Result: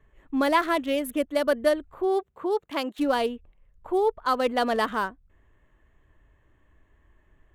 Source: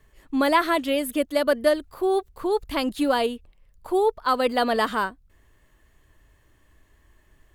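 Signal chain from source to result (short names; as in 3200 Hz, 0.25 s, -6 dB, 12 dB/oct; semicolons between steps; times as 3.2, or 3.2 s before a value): Wiener smoothing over 9 samples; 2.04–2.98 HPF 89 Hz -> 370 Hz 12 dB/oct; gain -2 dB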